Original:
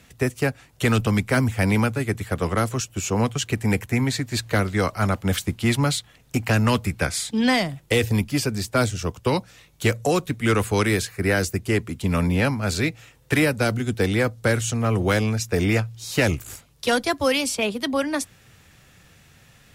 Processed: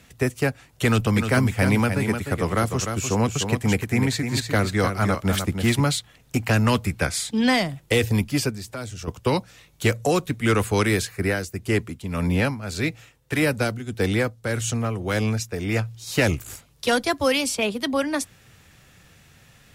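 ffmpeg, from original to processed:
ffmpeg -i in.wav -filter_complex "[0:a]asettb=1/sr,asplit=3[link_01][link_02][link_03];[link_01]atrim=end=0.864[link_04];[link_02]atrim=start=0.86:end=5.83,asetpts=PTS-STARTPTS,afade=type=in:duration=0.004:curve=qsin,afade=type=out:start_time=4.966:duration=0.004:curve=qsin,aecho=1:1:302:0.447,atrim=end_sample=219177[link_05];[link_03]atrim=start=5.826[link_06];[link_04][link_05]acrossfade=duration=0.004:curve1=hsin:curve2=qsin[link_07];[link_07][link_06]acrossfade=duration=0.004:curve1=qsin:curve2=hsin,asettb=1/sr,asplit=3[link_08][link_09][link_10];[link_08]atrim=end=8.504[link_11];[link_09]atrim=start=8.5:end=9.08,asetpts=PTS-STARTPTS,afade=type=in:duration=0.004:curve=qsin,afade=type=out:start_time=0.576:duration=0.004:curve=qsin,acompressor=threshold=-33dB:ratio=3:attack=3.2:release=140:knee=1:detection=peak[link_12];[link_10]atrim=start=9.076[link_13];[link_11][link_12]acrossfade=duration=0.004:curve1=hsin:curve2=qsin[link_14];[link_14][link_13]acrossfade=duration=0.004:curve1=qsin:curve2=hsin,asplit=3[link_15][link_16][link_17];[link_15]afade=type=out:start_time=11.13:duration=0.02[link_18];[link_16]tremolo=f=1.7:d=0.6,afade=type=in:start_time=11.13:duration=0.02,afade=type=out:start_time=16.06:duration=0.02[link_19];[link_17]afade=type=in:start_time=16.06:duration=0.02[link_20];[link_18][link_19][link_20]amix=inputs=3:normalize=0" out.wav

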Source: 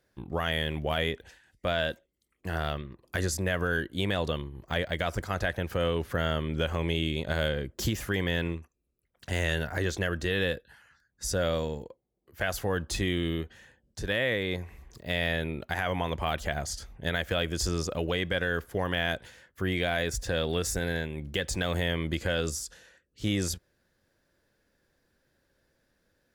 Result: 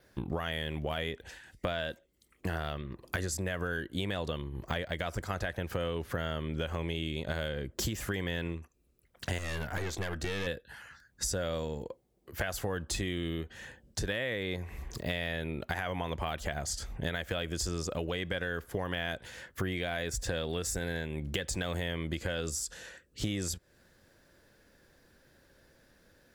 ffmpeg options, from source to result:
ffmpeg -i in.wav -filter_complex "[0:a]asettb=1/sr,asplit=3[link_01][link_02][link_03];[link_01]atrim=end=9.384[link_04];[link_02]atrim=start=9.38:end=10.47,asetpts=PTS-STARTPTS,afade=type=in:duration=0.004:curve=qsin,afade=type=out:start_time=1.086:duration=0.004:curve=qsin,aeval=exprs='(tanh(22.4*val(0)+0.7)-tanh(0.7))/22.4':channel_layout=same[link_05];[link_03]atrim=start=10.466[link_06];[link_04][link_05]acrossfade=duration=0.004:curve1=hsin:curve2=qsin[link_07];[link_07][link_06]acrossfade=duration=0.004:curve1=qsin:curve2=hsin,adynamicequalizer=threshold=0.00158:dfrequency=7700:dqfactor=6.9:tfrequency=7700:tqfactor=6.9:attack=5:release=100:ratio=0.375:range=3:mode=boostabove:tftype=bell,acompressor=threshold=-41dB:ratio=6,volume=9dB" out.wav

